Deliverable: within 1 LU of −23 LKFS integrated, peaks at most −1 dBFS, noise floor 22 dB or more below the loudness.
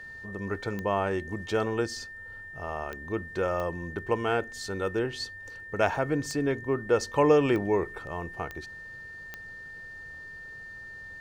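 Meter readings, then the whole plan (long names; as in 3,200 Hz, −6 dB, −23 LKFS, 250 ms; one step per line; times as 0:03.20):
number of clicks 7; interfering tone 1,800 Hz; level of the tone −41 dBFS; integrated loudness −29.5 LKFS; sample peak −8.5 dBFS; target loudness −23.0 LKFS
→ click removal
notch filter 1,800 Hz, Q 30
level +6.5 dB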